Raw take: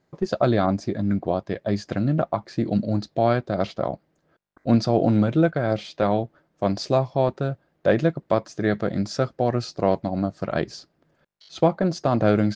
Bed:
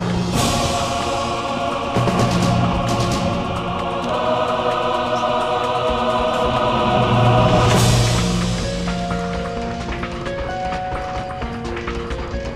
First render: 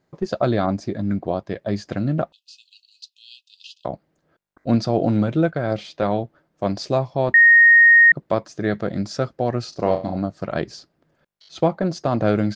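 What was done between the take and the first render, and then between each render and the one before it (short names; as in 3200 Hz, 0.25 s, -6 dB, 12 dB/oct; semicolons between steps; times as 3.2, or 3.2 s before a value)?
2.32–3.85 brick-wall FIR high-pass 2500 Hz; 7.34–8.12 bleep 1860 Hz -7.5 dBFS; 9.69–10.17 flutter echo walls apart 5.7 m, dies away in 0.32 s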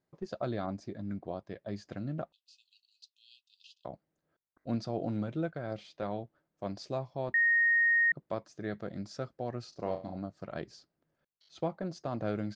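gain -15 dB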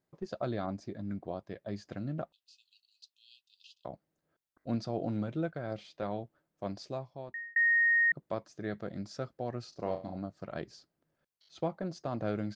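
6.69–7.56 fade out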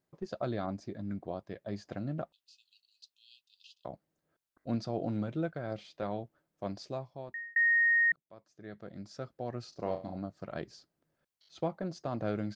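1.72–2.13 bell 750 Hz +5 dB 1.1 oct; 8.16–9.68 fade in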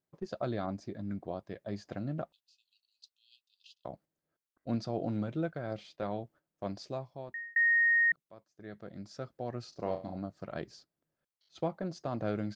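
gate -57 dBFS, range -7 dB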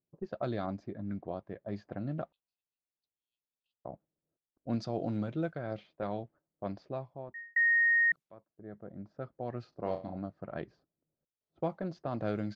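low-pass opened by the level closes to 520 Hz, open at -28.5 dBFS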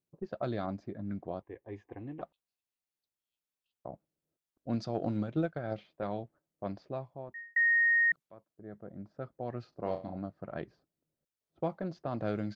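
1.42–2.22 fixed phaser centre 920 Hz, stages 8; 4.94–5.76 transient shaper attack +7 dB, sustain -4 dB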